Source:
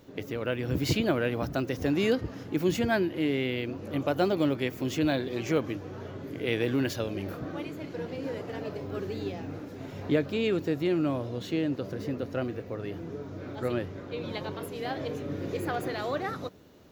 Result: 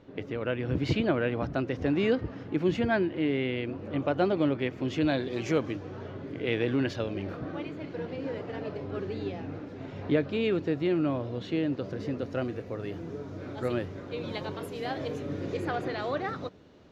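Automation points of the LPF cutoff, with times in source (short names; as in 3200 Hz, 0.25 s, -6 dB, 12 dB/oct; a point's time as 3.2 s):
4.78 s 3100 Hz
5.48 s 7900 Hz
6.19 s 3900 Hz
11.54 s 3900 Hz
12.66 s 10000 Hz
15.22 s 10000 Hz
15.82 s 4700 Hz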